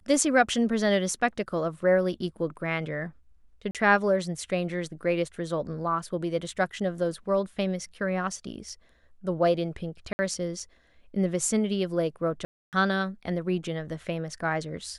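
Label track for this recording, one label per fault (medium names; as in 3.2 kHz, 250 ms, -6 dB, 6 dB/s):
3.710000	3.750000	dropout 37 ms
10.130000	10.190000	dropout 60 ms
12.450000	12.730000	dropout 278 ms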